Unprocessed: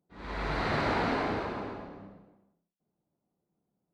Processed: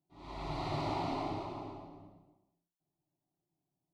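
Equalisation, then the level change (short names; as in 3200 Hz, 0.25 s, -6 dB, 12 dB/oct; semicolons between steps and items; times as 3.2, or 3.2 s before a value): low shelf 100 Hz +5.5 dB; fixed phaser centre 320 Hz, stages 8; -4.0 dB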